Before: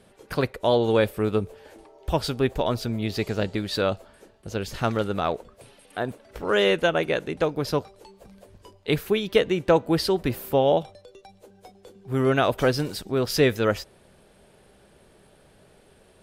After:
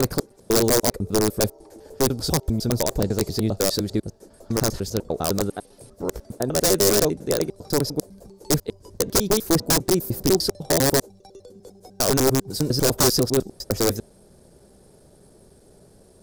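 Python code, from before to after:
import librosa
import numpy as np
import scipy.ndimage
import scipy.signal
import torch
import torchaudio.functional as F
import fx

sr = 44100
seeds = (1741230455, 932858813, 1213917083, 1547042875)

y = fx.block_reorder(x, sr, ms=100.0, group=5)
y = (np.mod(10.0 ** (14.0 / 20.0) * y + 1.0, 2.0) - 1.0) / 10.0 ** (14.0 / 20.0)
y = fx.curve_eq(y, sr, hz=(380.0, 2900.0, 5100.0), db=(0, -16, 1))
y = F.gain(torch.from_numpy(y), 5.0).numpy()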